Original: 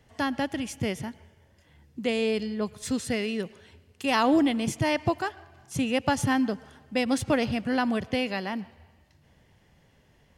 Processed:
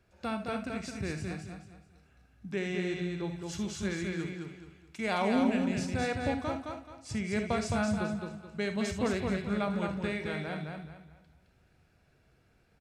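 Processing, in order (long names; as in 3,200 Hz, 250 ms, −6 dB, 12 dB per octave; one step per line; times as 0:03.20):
repeating echo 174 ms, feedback 31%, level −4 dB
speed change −19%
reverb whose tail is shaped and stops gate 90 ms rising, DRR 8 dB
level −7.5 dB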